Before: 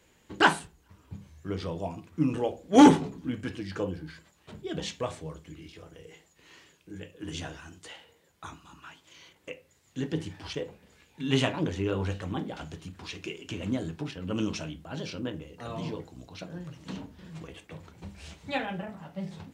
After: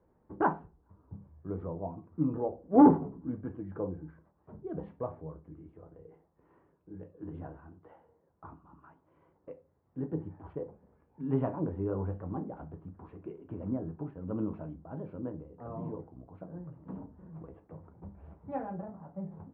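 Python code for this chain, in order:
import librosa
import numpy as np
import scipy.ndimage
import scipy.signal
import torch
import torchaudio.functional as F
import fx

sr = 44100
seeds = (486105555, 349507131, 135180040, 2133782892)

y = scipy.signal.sosfilt(scipy.signal.butter(4, 1100.0, 'lowpass', fs=sr, output='sos'), x)
y = y * 10.0 ** (-3.5 / 20.0)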